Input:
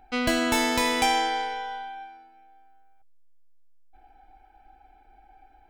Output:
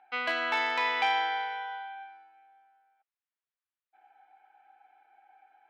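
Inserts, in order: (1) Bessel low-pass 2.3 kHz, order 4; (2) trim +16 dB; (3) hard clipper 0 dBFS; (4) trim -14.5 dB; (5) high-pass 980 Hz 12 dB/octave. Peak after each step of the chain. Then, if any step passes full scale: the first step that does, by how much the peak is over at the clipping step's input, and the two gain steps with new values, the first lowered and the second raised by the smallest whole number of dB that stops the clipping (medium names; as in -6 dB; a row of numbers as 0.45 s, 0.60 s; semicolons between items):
-12.5 dBFS, +3.5 dBFS, 0.0 dBFS, -14.5 dBFS, -16.0 dBFS; step 2, 3.5 dB; step 2 +12 dB, step 4 -10.5 dB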